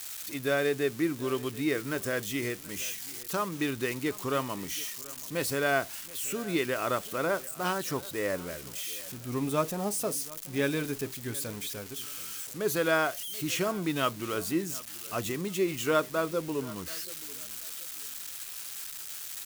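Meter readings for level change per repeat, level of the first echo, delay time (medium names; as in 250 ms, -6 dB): -11.0 dB, -20.0 dB, 731 ms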